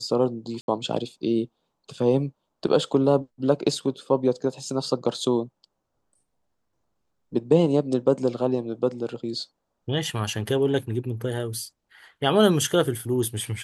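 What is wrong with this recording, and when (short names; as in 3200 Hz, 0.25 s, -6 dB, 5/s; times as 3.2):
0.61–0.68 gap 71 ms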